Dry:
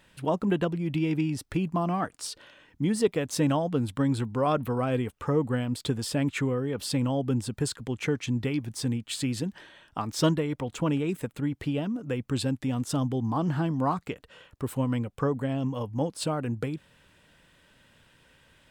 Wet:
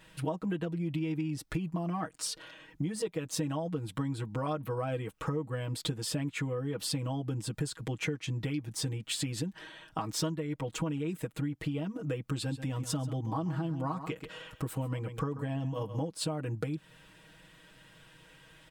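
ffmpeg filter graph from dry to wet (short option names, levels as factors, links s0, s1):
-filter_complex "[0:a]asettb=1/sr,asplit=3[s0][s1][s2];[s0]atrim=end=12.204[s3];[s1]atrim=start=12.2:end=16,asetpts=PTS-STARTPTS,afade=t=in:d=0.004:c=qsin,afade=t=out:st=3.796:d=0.004:c=qsin,acompressor=mode=upward:threshold=0.00794:ratio=2.5:attack=3.2:release=140:knee=2.83:detection=peak,aecho=1:1:134:0.211,atrim=end_sample=167580[s4];[s2]atrim=start=15.996[s5];[s3][s4]acrossfade=d=0.004:c1=hsin:c2=qsin[s6];[s6][s5]acrossfade=d=0.004:c1=qsin:c2=hsin,aecho=1:1:6.3:0.99,acompressor=threshold=0.0282:ratio=6"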